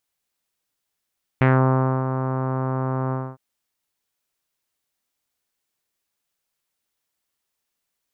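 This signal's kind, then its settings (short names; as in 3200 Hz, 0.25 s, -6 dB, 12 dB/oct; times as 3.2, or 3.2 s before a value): synth note saw C3 24 dB/oct, low-pass 1200 Hz, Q 1.8, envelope 1 oct, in 0.20 s, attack 2.4 ms, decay 0.63 s, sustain -9 dB, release 0.25 s, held 1.71 s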